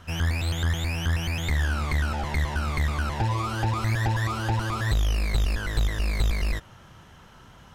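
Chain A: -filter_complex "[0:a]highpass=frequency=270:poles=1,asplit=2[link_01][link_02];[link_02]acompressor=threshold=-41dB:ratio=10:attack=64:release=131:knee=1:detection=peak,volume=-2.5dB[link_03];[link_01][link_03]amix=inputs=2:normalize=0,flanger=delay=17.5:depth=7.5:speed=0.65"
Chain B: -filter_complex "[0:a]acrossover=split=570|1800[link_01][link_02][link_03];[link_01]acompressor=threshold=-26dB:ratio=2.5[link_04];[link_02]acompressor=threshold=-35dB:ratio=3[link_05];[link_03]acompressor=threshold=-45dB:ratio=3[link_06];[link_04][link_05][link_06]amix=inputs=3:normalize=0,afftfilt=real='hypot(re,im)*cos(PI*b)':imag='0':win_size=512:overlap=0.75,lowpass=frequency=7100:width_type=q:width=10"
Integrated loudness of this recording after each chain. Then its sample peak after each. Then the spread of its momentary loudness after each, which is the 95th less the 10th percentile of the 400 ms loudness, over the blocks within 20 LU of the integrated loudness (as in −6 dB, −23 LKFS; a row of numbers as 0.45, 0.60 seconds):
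−32.0, −37.0 LKFS; −17.5, −17.0 dBFS; 16, 14 LU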